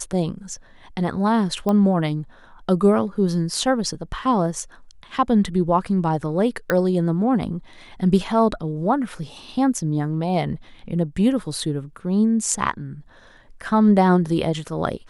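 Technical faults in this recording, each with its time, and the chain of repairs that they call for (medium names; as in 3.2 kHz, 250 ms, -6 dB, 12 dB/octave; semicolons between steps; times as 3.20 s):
1.69 s: pop -12 dBFS
6.70 s: pop -8 dBFS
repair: de-click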